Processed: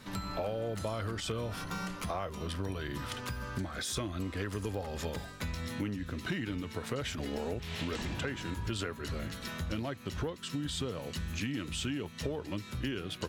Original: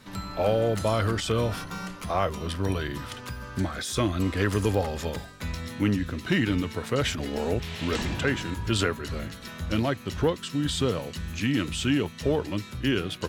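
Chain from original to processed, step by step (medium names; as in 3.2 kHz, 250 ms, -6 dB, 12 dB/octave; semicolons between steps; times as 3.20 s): compression, threshold -33 dBFS, peak gain reduction 14 dB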